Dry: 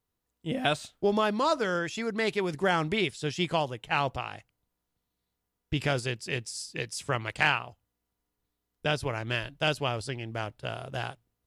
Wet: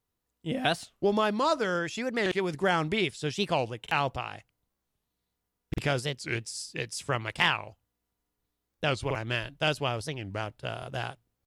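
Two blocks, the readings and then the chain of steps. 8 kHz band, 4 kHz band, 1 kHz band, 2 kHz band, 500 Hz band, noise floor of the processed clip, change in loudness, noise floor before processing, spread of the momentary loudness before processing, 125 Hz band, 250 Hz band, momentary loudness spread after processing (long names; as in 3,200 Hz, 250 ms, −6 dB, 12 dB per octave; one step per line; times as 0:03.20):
0.0 dB, +0.5 dB, 0.0 dB, −0.5 dB, 0.0 dB, −83 dBFS, 0.0 dB, −84 dBFS, 10 LU, −0.5 dB, 0.0 dB, 10 LU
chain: buffer that repeats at 0:02.23/0:03.82/0:05.69/0:09.06/0:10.78, samples 2,048, times 1
wow of a warped record 45 rpm, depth 250 cents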